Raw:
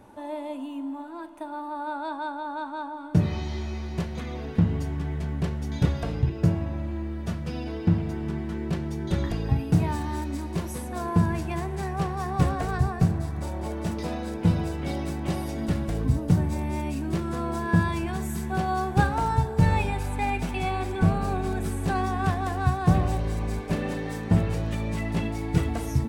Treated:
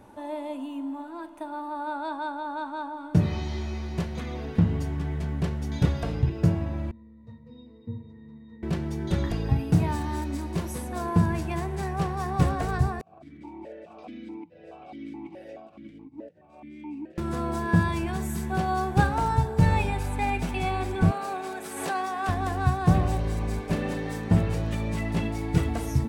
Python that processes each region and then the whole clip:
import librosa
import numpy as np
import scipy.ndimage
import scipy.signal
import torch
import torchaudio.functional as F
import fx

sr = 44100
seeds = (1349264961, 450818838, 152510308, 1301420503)

y = fx.chain(x, sr, fx.highpass(hz=70.0, slope=12),
    fx.high_shelf(hz=4000.0, db=6.0),
    fx.octave_resonator(note='A#', decay_s=0.25), at=(6.91, 8.63))
y = fx.chain(y, sr, fx.over_compress(threshold_db=-31.0, ratio=-1.0),
    fx.vowel_held(hz=4.7), at=(13.01, 17.18))
y = fx.chain(y, sr, fx.highpass(hz=480.0, slope=12),
    fx.pre_swell(db_per_s=53.0), at=(21.11, 22.29))